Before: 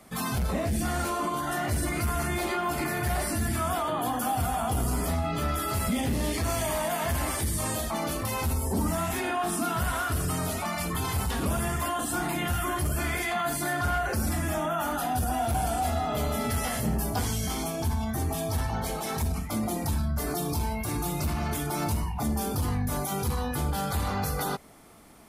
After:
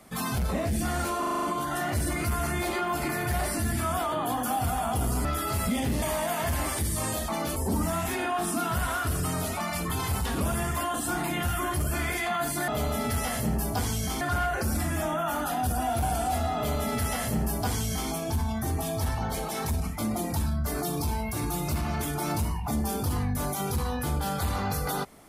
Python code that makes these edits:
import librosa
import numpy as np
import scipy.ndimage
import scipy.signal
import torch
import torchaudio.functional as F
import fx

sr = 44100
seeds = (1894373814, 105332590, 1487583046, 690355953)

y = fx.edit(x, sr, fx.stutter(start_s=1.19, slice_s=0.04, count=7),
    fx.cut(start_s=5.01, length_s=0.45),
    fx.cut(start_s=6.23, length_s=0.41),
    fx.cut(start_s=8.18, length_s=0.43),
    fx.duplicate(start_s=16.08, length_s=1.53, to_s=13.73), tone=tone)